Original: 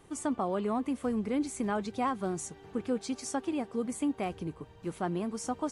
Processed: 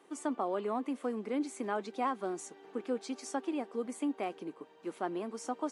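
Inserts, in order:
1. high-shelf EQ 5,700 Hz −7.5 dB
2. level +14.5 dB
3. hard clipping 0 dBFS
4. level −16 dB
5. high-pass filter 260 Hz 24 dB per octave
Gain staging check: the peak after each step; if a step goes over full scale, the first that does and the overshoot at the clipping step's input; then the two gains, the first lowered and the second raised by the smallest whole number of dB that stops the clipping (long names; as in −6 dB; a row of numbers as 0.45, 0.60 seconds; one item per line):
−20.0, −5.5, −5.5, −21.5, −21.0 dBFS
no step passes full scale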